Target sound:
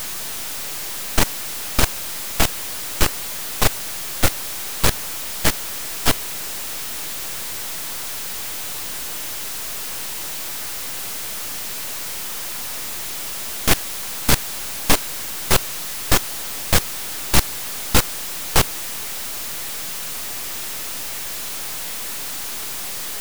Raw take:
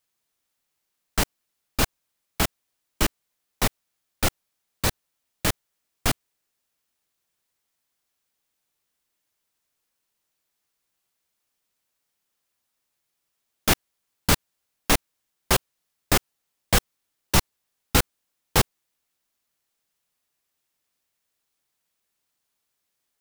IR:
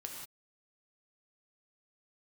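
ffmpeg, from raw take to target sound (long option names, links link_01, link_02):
-af "aeval=exprs='val(0)+0.5*0.0708*sgn(val(0))':channel_layout=same,aeval=exprs='0.631*(cos(1*acos(clip(val(0)/0.631,-1,1)))-cos(1*PI/2))+0.178*(cos(8*acos(clip(val(0)/0.631,-1,1)))-cos(8*PI/2))':channel_layout=same"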